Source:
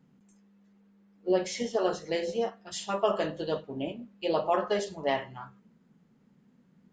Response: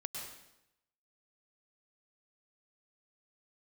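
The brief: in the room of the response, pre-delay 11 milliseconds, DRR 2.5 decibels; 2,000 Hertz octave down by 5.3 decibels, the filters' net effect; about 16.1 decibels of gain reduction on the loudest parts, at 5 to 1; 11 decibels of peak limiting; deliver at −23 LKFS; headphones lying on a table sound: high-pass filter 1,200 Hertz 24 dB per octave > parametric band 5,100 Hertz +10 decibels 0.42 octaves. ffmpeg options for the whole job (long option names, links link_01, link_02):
-filter_complex "[0:a]equalizer=frequency=2000:width_type=o:gain=-6.5,acompressor=threshold=-40dB:ratio=5,alimiter=level_in=15dB:limit=-24dB:level=0:latency=1,volume=-15dB,asplit=2[link_01][link_02];[1:a]atrim=start_sample=2205,adelay=11[link_03];[link_02][link_03]afir=irnorm=-1:irlink=0,volume=-2dB[link_04];[link_01][link_04]amix=inputs=2:normalize=0,highpass=frequency=1200:width=0.5412,highpass=frequency=1200:width=1.3066,equalizer=frequency=5100:width_type=o:width=0.42:gain=10,volume=26dB"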